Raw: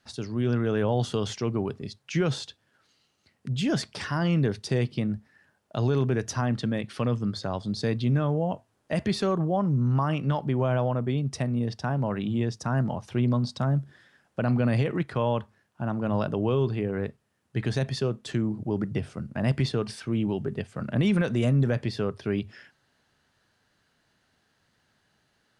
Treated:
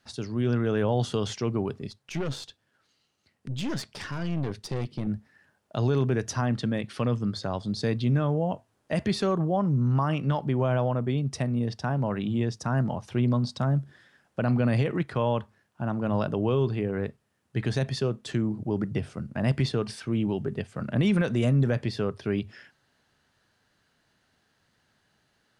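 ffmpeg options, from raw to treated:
-filter_complex "[0:a]asettb=1/sr,asplit=3[a][b][c];[a]atrim=end=1.874[d];[b]atrim=start=1.87:end=5.07,asetpts=PTS-STARTPTS,afade=t=in:d=0.004:c=qsin,afade=t=out:st=3.196:d=0.004:c=qsin,aeval=exprs='(tanh(20*val(0)+0.65)-tanh(0.65))/20':c=same[e];[c]atrim=start=5.066[f];[d][e]acrossfade=d=0.004:c1=hsin:c2=qsin[g];[g][f]acrossfade=d=0.004:c1=qsin:c2=hsin"

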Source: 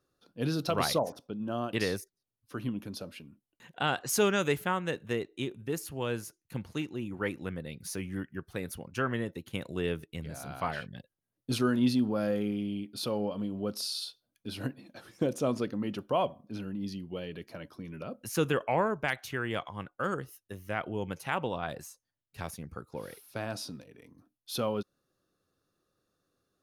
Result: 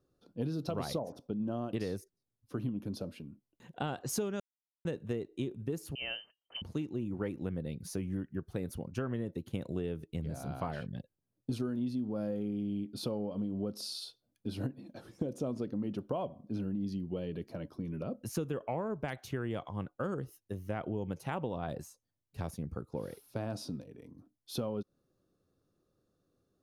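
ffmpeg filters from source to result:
-filter_complex "[0:a]asettb=1/sr,asplit=3[a][b][c];[a]atrim=end=5.954[d];[b]atrim=start=5.95:end=6.62,asetpts=PTS-STARTPTS,afade=t=in:d=0.004:c=qsin,afade=t=out:st=0.666:d=0.004:c=qsin,lowpass=f=2.7k:t=q:w=0.5098,lowpass=f=2.7k:t=q:w=0.6013,lowpass=f=2.7k:t=q:w=0.9,lowpass=f=2.7k:t=q:w=2.563,afreqshift=-3200[e];[c]atrim=start=6.616[f];[d][e]acrossfade=d=0.004:c1=hsin:c2=qsin[g];[g][f]acrossfade=d=0.004:c1=qsin:c2=hsin,asplit=3[h][i][j];[h]atrim=end=4.4,asetpts=PTS-STARTPTS,afade=t=out:st=4.396:d=0.004:c=hsin[k];[i]atrim=start=4.4:end=4.85,asetpts=PTS-STARTPTS,volume=0[l];[j]atrim=start=4.85,asetpts=PTS-STARTPTS,afade=t=in:d=0.004:c=hsin[m];[k][l][m]concat=n=3:v=0:a=1,lowpass=f=3k:p=1,equalizer=f=1.9k:t=o:w=2.5:g=-11.5,acompressor=threshold=-36dB:ratio=12,volume=5dB"

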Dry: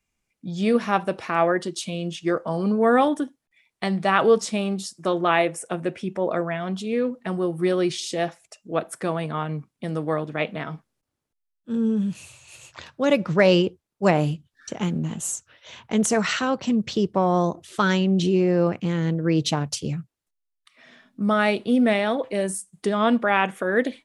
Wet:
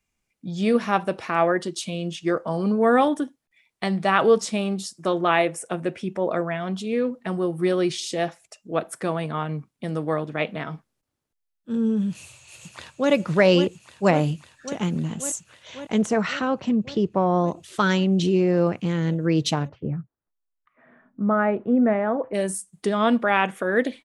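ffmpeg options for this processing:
-filter_complex "[0:a]asplit=2[a][b];[b]afade=t=in:st=12.1:d=0.01,afade=t=out:st=13.11:d=0.01,aecho=0:1:550|1100|1650|2200|2750|3300|3850|4400|4950|5500|6050|6600:0.398107|0.318486|0.254789|0.203831|0.163065|0.130452|0.104361|0.0834891|0.0667913|0.053433|0.0427464|0.0341971[c];[a][c]amix=inputs=2:normalize=0,asettb=1/sr,asplit=3[d][e][f];[d]atrim=end=16.024[g];[e]atrim=start=16.02:end=17.48,asetpts=PTS-STARTPTS,afade=t=in:d=0.004:c=qsin,afade=t=out:st=1.456:d=0.004:c=qsin,aemphasis=mode=reproduction:type=75kf[h];[f]atrim=start=17.476[i];[g][h]acrossfade=d=0.004:c1=hsin:c2=qsin[j];[j][i]acrossfade=d=0.004:c1=qsin:c2=hsin,asplit=3[k][l][m];[k]afade=t=out:st=19.67:d=0.02[n];[l]lowpass=f=1.6k:w=0.5412,lowpass=f=1.6k:w=1.3066,afade=t=in:st=19.67:d=0.02,afade=t=out:st=22.33:d=0.02[o];[m]afade=t=in:st=22.33:d=0.02[p];[n][o][p]amix=inputs=3:normalize=0"

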